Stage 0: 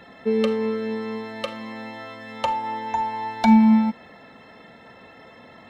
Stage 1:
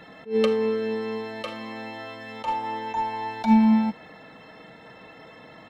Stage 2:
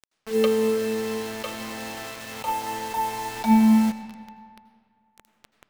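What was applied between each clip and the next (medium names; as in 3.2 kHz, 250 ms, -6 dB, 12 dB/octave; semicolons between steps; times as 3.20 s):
comb 6.4 ms, depth 37%; attacks held to a fixed rise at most 220 dB/s
word length cut 6-bit, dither none; on a send at -10 dB: reverberation RT60 2.2 s, pre-delay 77 ms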